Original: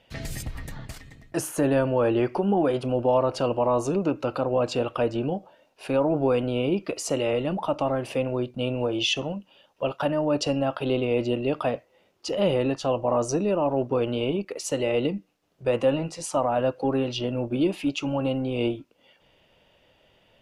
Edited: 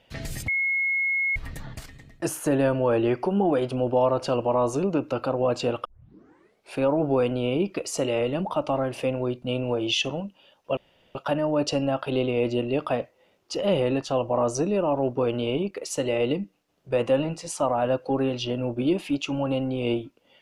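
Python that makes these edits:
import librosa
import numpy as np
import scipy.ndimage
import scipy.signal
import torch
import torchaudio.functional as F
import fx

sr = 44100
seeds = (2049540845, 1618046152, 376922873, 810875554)

y = fx.edit(x, sr, fx.insert_tone(at_s=0.48, length_s=0.88, hz=2170.0, db=-21.5),
    fx.tape_start(start_s=4.97, length_s=0.9),
    fx.insert_room_tone(at_s=9.89, length_s=0.38), tone=tone)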